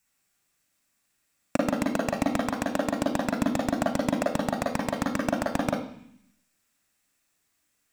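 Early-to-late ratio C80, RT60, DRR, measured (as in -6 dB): 10.0 dB, 0.65 s, 0.0 dB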